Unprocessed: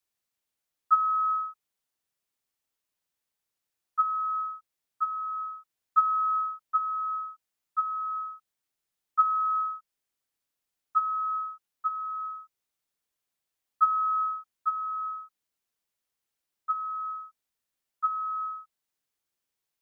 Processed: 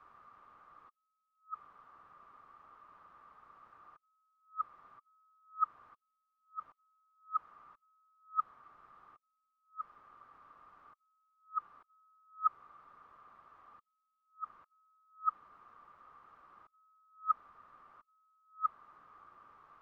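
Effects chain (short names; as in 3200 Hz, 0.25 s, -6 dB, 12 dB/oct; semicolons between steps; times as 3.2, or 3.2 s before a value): negative-ratio compressor -59 dBFS, ratio -0.5; synth low-pass 1200 Hz, resonance Q 14; gain -1 dB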